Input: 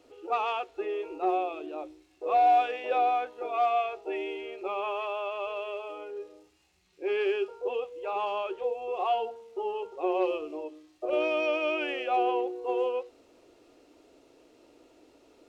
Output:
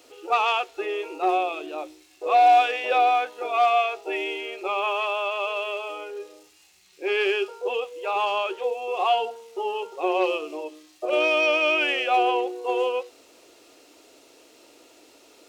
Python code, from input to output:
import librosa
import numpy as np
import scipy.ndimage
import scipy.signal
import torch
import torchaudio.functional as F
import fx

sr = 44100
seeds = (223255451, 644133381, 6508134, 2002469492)

y = fx.tilt_eq(x, sr, slope=3.0)
y = F.gain(torch.from_numpy(y), 7.0).numpy()